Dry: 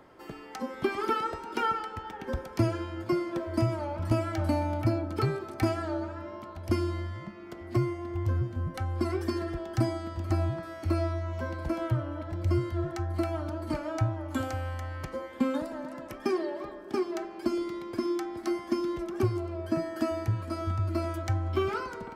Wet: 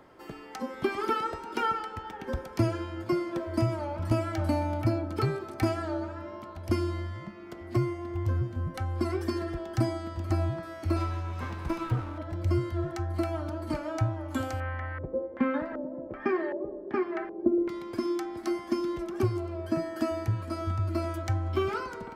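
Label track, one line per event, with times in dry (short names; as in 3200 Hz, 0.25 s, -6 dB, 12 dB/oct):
10.960000	12.180000	minimum comb delay 0.8 ms
14.600000	17.690000	LFO low-pass square 1.3 Hz 480–1900 Hz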